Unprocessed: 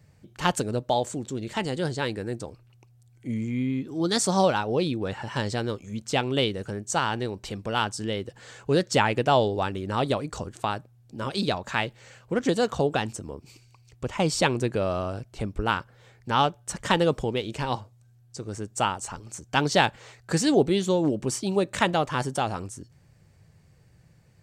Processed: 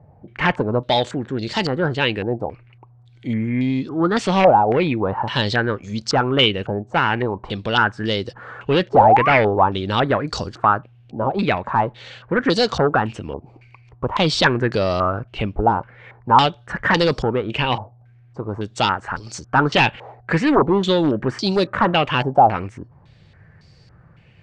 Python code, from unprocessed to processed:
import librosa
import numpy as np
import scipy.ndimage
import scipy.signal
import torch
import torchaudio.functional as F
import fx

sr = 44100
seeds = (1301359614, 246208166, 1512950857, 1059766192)

y = fx.spec_paint(x, sr, seeds[0], shape='rise', start_s=8.93, length_s=0.41, low_hz=400.0, high_hz=1500.0, level_db=-29.0)
y = fx.fold_sine(y, sr, drive_db=12, ceiling_db=-3.5)
y = fx.filter_held_lowpass(y, sr, hz=3.6, low_hz=780.0, high_hz=4700.0)
y = y * 10.0 ** (-8.5 / 20.0)